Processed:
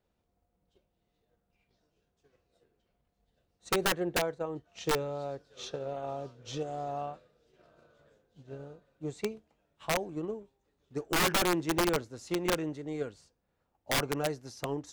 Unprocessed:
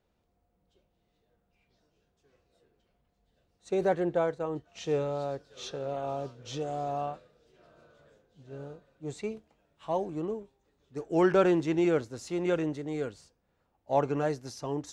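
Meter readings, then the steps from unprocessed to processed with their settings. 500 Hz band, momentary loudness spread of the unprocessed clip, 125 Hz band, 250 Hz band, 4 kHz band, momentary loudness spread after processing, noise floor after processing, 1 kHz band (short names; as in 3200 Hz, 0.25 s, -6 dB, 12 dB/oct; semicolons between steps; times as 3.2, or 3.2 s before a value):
-4.5 dB, 17 LU, -2.5 dB, -4.0 dB, +9.5 dB, 14 LU, -79 dBFS, -1.0 dB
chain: transient shaper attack +7 dB, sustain 0 dB; wrapped overs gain 17.5 dB; gain -4 dB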